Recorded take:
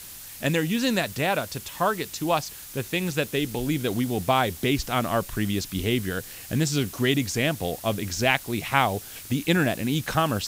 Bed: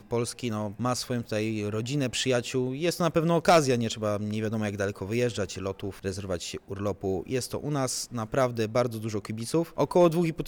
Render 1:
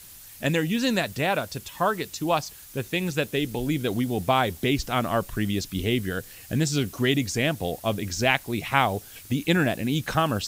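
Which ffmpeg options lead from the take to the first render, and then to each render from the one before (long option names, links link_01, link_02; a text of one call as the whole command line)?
ffmpeg -i in.wav -af "afftdn=noise_reduction=6:noise_floor=-42" out.wav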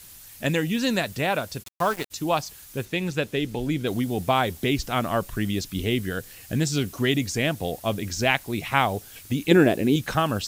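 ffmpeg -i in.wav -filter_complex "[0:a]asplit=3[link_01][link_02][link_03];[link_01]afade=type=out:start_time=1.62:duration=0.02[link_04];[link_02]aeval=exprs='val(0)*gte(abs(val(0)),0.0282)':channel_layout=same,afade=type=in:start_time=1.62:duration=0.02,afade=type=out:start_time=2.1:duration=0.02[link_05];[link_03]afade=type=in:start_time=2.1:duration=0.02[link_06];[link_04][link_05][link_06]amix=inputs=3:normalize=0,asettb=1/sr,asplit=3[link_07][link_08][link_09];[link_07]atrim=end=2.854[link_10];[link_08]atrim=start=2.85:end=3.87,asetpts=PTS-STARTPTS,afade=type=in:duration=0.004:curve=qsin,afade=type=out:start_time=1.016:duration=0.004:curve=qsin,highshelf=frequency=8200:gain=-9.5[link_11];[link_09]atrim=start=3.866[link_12];[link_10][link_11]acrossfade=duration=0.004:curve1=hsin:curve2=qsin[link_13];[link_13][link_12]acrossfade=duration=0.004:curve1=qsin:curve2=hsin,asettb=1/sr,asplit=3[link_14][link_15][link_16];[link_14]atrim=end=9.514[link_17];[link_15]atrim=start=9.51:end=9.96,asetpts=PTS-STARTPTS,afade=type=in:duration=0.004:curve=qsin,afade=type=out:start_time=0.446:duration=0.004:curve=qsin,equalizer=frequency=390:width_type=o:width=1:gain=12[link_18];[link_16]atrim=start=9.956[link_19];[link_17][link_18]acrossfade=duration=0.004:curve1=hsin:curve2=qsin[link_20];[link_20][link_19]acrossfade=duration=0.004:curve1=qsin:curve2=hsin" out.wav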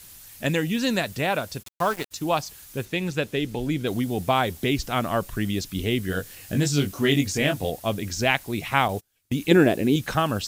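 ffmpeg -i in.wav -filter_complex "[0:a]asettb=1/sr,asplit=3[link_01][link_02][link_03];[link_01]atrim=end=1.574[link_04];[link_02]atrim=start=1.57:end=2.29,asetpts=PTS-STARTPTS,afade=type=in:duration=0.004:curve=qsin,afade=type=out:start_time=0.716:duration=0.004:curve=qsin,aeval=exprs='sgn(val(0))*max(abs(val(0))-0.00178,0)':channel_layout=same[link_05];[link_03]atrim=start=2.286[link_06];[link_04][link_05]acrossfade=duration=0.004:curve1=hsin:curve2=qsin[link_07];[link_07][link_06]acrossfade=duration=0.004:curve1=qsin:curve2=hsin,asettb=1/sr,asplit=3[link_08][link_09][link_10];[link_08]atrim=end=6.074[link_11];[link_09]atrim=start=6.07:end=7.7,asetpts=PTS-STARTPTS,afade=type=in:duration=0.004:curve=qsin,afade=type=out:start_time=1.626:duration=0.004:curve=qsin,asplit=2[link_12][link_13];[link_13]adelay=21,volume=-4dB[link_14];[link_12][link_14]amix=inputs=2:normalize=0,atrim=end_sample=71883[link_15];[link_10]atrim=start=7.696[link_16];[link_11][link_15]acrossfade=duration=0.004:curve1=hsin:curve2=qsin[link_17];[link_17][link_16]acrossfade=duration=0.004:curve1=qsin:curve2=hsin,asettb=1/sr,asplit=3[link_18][link_19][link_20];[link_18]atrim=end=8.884[link_21];[link_19]atrim=start=8.88:end=9.35,asetpts=PTS-STARTPTS,afade=type=in:duration=0.004:curve=qsin,afade=type=out:start_time=0.466:duration=0.004:curve=qsin,agate=range=-28dB:threshold=-34dB:ratio=16:release=100:detection=peak[link_22];[link_20]atrim=start=9.346[link_23];[link_21][link_22]acrossfade=duration=0.004:curve1=hsin:curve2=qsin[link_24];[link_24][link_23]acrossfade=duration=0.004:curve1=qsin:curve2=hsin" out.wav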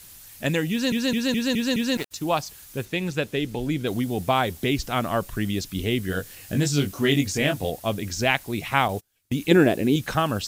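ffmpeg -i in.wav -filter_complex "[0:a]asplit=7[link_01][link_02][link_03][link_04][link_05][link_06][link_07];[link_01]atrim=end=0.922[link_08];[link_02]atrim=start=0.708:end=0.922[link_09];[link_03]atrim=start=0.708:end=0.922[link_10];[link_04]atrim=start=0.708:end=0.922[link_11];[link_05]atrim=start=0.708:end=0.922[link_12];[link_06]atrim=start=0.708:end=0.922[link_13];[link_07]atrim=start=1.968[link_14];[link_08][link_09]acrossfade=duration=0.004:curve1=hsin:curve2=hsin[link_15];[link_15][link_10]acrossfade=duration=0.004:curve1=hsin:curve2=hsin[link_16];[link_16][link_11]acrossfade=duration=0.004:curve1=hsin:curve2=hsin[link_17];[link_17][link_12]acrossfade=duration=0.004:curve1=hsin:curve2=hsin[link_18];[link_18][link_13]acrossfade=duration=0.004:curve1=hsin:curve2=hsin[link_19];[link_19][link_14]acrossfade=duration=0.004:curve1=hsin:curve2=hsin" out.wav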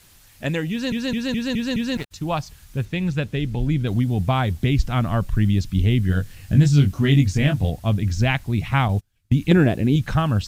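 ffmpeg -i in.wav -af "lowpass=frequency=3800:poles=1,asubboost=boost=6.5:cutoff=160" out.wav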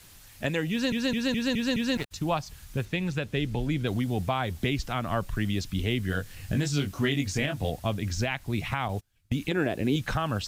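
ffmpeg -i in.wav -filter_complex "[0:a]acrossover=split=310[link_01][link_02];[link_01]acompressor=threshold=-29dB:ratio=6[link_03];[link_03][link_02]amix=inputs=2:normalize=0,alimiter=limit=-16dB:level=0:latency=1:release=201" out.wav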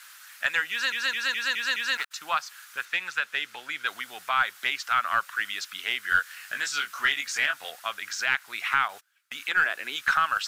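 ffmpeg -i in.wav -filter_complex "[0:a]highpass=frequency=1400:width_type=q:width=3.8,asplit=2[link_01][link_02];[link_02]aeval=exprs='clip(val(0),-1,0.0668)':channel_layout=same,volume=-8.5dB[link_03];[link_01][link_03]amix=inputs=2:normalize=0" out.wav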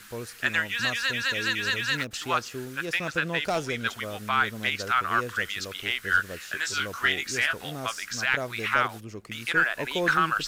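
ffmpeg -i in.wav -i bed.wav -filter_complex "[1:a]volume=-8.5dB[link_01];[0:a][link_01]amix=inputs=2:normalize=0" out.wav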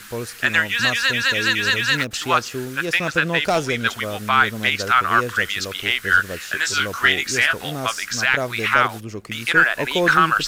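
ffmpeg -i in.wav -af "volume=8dB,alimiter=limit=-3dB:level=0:latency=1" out.wav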